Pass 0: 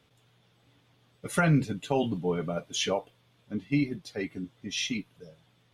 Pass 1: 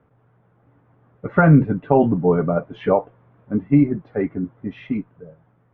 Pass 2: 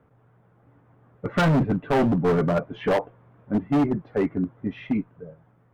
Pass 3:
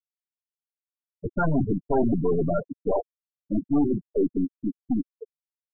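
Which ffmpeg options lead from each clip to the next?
-af "lowpass=f=1.5k:w=0.5412,lowpass=f=1.5k:w=1.3066,dynaudnorm=f=210:g=11:m=5dB,volume=7dB"
-af "asoftclip=type=hard:threshold=-17dB"
-af "aeval=exprs='(tanh(17.8*val(0)+0.35)-tanh(0.35))/17.8':c=same,afftfilt=real='re*gte(hypot(re,im),0.112)':imag='im*gte(hypot(re,im),0.112)':win_size=1024:overlap=0.75,aecho=1:1:2.9:0.34,volume=5.5dB"

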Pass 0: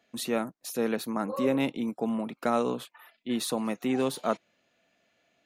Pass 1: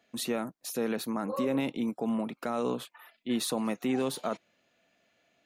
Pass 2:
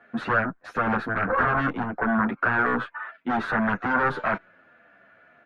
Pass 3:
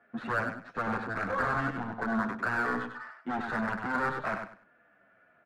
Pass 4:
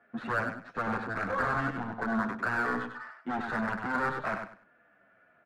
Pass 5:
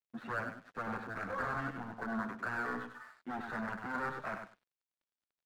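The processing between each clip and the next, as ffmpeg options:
-af "alimiter=limit=-20.5dB:level=0:latency=1:release=47"
-filter_complex "[0:a]aeval=exprs='0.1*sin(PI/2*3.16*val(0)/0.1)':c=same,lowpass=f=1.5k:t=q:w=5.4,asplit=2[a][b];[b]adelay=9.3,afreqshift=-1.5[c];[a][c]amix=inputs=2:normalize=1"
-af "adynamicsmooth=sensitivity=6:basefreq=3.2k,aecho=1:1:98|196|294:0.473|0.109|0.025,volume=-8dB"
-af anull
-af "aeval=exprs='sgn(val(0))*max(abs(val(0))-0.0015,0)':c=same,volume=-7dB"

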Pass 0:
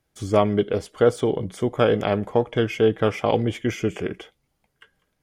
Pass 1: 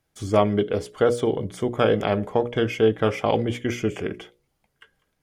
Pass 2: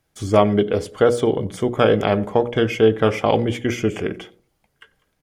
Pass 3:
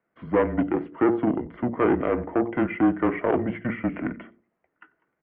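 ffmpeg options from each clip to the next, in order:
-af "bandreject=f=60:t=h:w=6,bandreject=f=120:t=h:w=6,bandreject=f=180:t=h:w=6,bandreject=f=240:t=h:w=6,bandreject=f=300:t=h:w=6,bandreject=f=360:t=h:w=6,bandreject=f=420:t=h:w=6,bandreject=f=480:t=h:w=6,bandreject=f=540:t=h:w=6,bandreject=f=600:t=h:w=6"
-filter_complex "[0:a]asplit=2[a][b];[b]adelay=92,lowpass=f=950:p=1,volume=-18dB,asplit=2[c][d];[d]adelay=92,lowpass=f=950:p=1,volume=0.38,asplit=2[e][f];[f]adelay=92,lowpass=f=950:p=1,volume=0.38[g];[a][c][e][g]amix=inputs=4:normalize=0,volume=4dB"
-af "aeval=exprs='(tanh(4.47*val(0)+0.55)-tanh(0.55))/4.47':c=same,highpass=f=290:t=q:w=0.5412,highpass=f=290:t=q:w=1.307,lowpass=f=2.3k:t=q:w=0.5176,lowpass=f=2.3k:t=q:w=0.7071,lowpass=f=2.3k:t=q:w=1.932,afreqshift=-130"

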